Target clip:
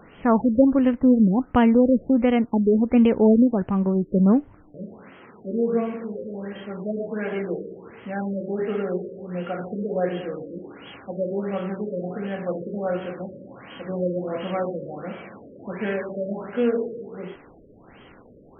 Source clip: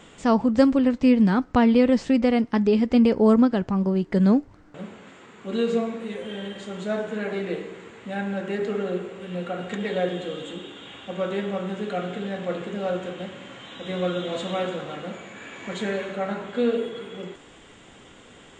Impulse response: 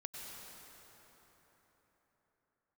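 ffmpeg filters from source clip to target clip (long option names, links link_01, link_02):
-af "afftfilt=real='re*lt(b*sr/1024,600*pow(3400/600,0.5+0.5*sin(2*PI*1.4*pts/sr)))':imag='im*lt(b*sr/1024,600*pow(3400/600,0.5+0.5*sin(2*PI*1.4*pts/sr)))':win_size=1024:overlap=0.75,volume=1dB"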